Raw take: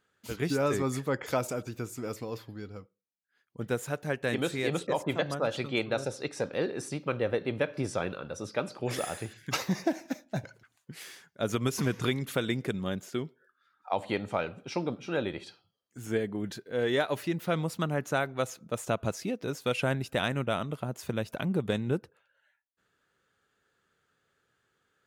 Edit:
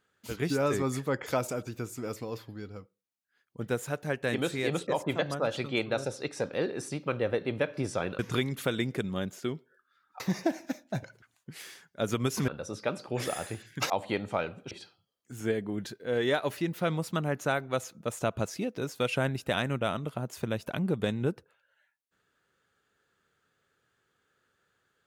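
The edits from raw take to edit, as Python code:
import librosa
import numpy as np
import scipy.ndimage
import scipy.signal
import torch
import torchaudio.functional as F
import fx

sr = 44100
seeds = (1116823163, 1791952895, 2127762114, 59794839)

y = fx.edit(x, sr, fx.swap(start_s=8.19, length_s=1.42, other_s=11.89, other_length_s=2.01),
    fx.cut(start_s=14.71, length_s=0.66), tone=tone)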